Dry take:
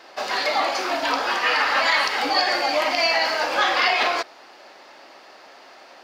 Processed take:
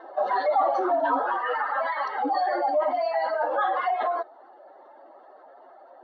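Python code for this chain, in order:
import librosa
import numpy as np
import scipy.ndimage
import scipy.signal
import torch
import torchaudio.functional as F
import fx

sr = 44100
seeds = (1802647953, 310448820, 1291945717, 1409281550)

y = fx.spec_expand(x, sr, power=2.0)
y = fx.rider(y, sr, range_db=10, speed_s=0.5)
y = scipy.signal.lfilter(np.full(18, 1.0 / 18), 1.0, y)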